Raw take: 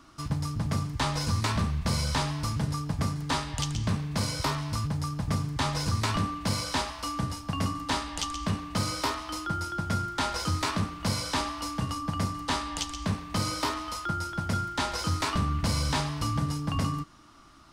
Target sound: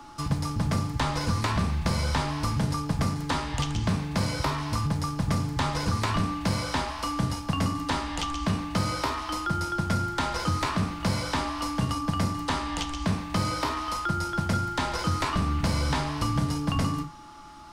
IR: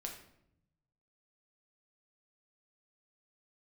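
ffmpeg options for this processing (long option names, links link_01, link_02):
-filter_complex "[0:a]aeval=exprs='val(0)+0.00316*sin(2*PI*850*n/s)':channel_layout=same,asplit=2[link_01][link_02];[1:a]atrim=start_sample=2205,atrim=end_sample=3528[link_03];[link_02][link_03]afir=irnorm=-1:irlink=0,volume=2.5dB[link_04];[link_01][link_04]amix=inputs=2:normalize=0,acrossover=split=160|3000[link_05][link_06][link_07];[link_05]acompressor=threshold=-26dB:ratio=4[link_08];[link_06]acompressor=threshold=-26dB:ratio=4[link_09];[link_07]acompressor=threshold=-39dB:ratio=4[link_10];[link_08][link_09][link_10]amix=inputs=3:normalize=0"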